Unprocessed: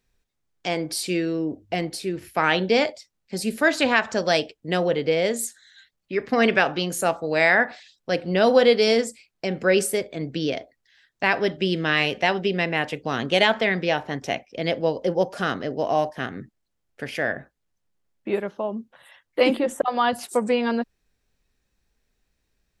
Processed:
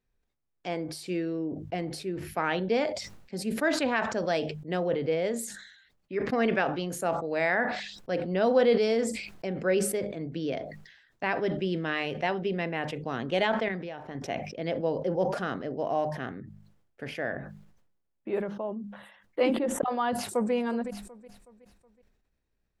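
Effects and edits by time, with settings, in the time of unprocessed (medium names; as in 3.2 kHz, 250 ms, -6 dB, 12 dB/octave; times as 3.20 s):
13.68–14.15 s: compression, threshold -27 dBFS
20.12–20.53 s: echo throw 370 ms, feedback 45%, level -15.5 dB
whole clip: treble shelf 2.5 kHz -11 dB; de-hum 50.81 Hz, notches 4; decay stretcher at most 62 dB/s; trim -6 dB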